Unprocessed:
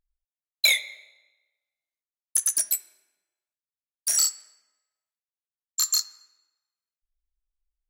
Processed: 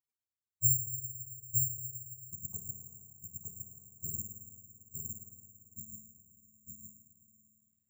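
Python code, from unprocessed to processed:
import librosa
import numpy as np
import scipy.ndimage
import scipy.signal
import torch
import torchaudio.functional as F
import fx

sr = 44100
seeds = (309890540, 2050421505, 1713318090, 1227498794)

p1 = fx.octave_mirror(x, sr, pivot_hz=520.0)
p2 = fx.doppler_pass(p1, sr, speed_mps=5, closest_m=5.2, pass_at_s=3.46)
p3 = p2 + fx.echo_single(p2, sr, ms=910, db=-3.0, dry=0)
p4 = fx.rev_spring(p3, sr, rt60_s=2.9, pass_ms=(51, 56), chirp_ms=45, drr_db=5.0)
p5 = (np.kron(p4[::6], np.eye(6)[0]) * 6)[:len(p4)]
y = F.gain(torch.from_numpy(p5), -6.5).numpy()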